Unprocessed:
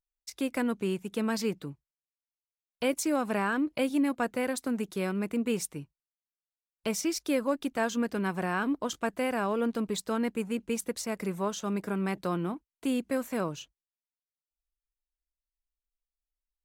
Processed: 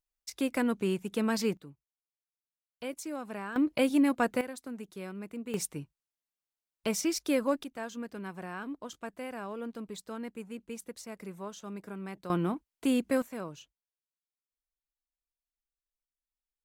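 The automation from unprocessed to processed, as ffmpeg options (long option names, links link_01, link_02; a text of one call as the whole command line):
ffmpeg -i in.wav -af "asetnsamples=nb_out_samples=441:pad=0,asendcmd='1.57 volume volume -10dB;3.56 volume volume 2dB;4.41 volume volume -10dB;5.54 volume volume 0dB;7.64 volume volume -10dB;12.3 volume volume 2dB;13.22 volume volume -8dB',volume=0.5dB" out.wav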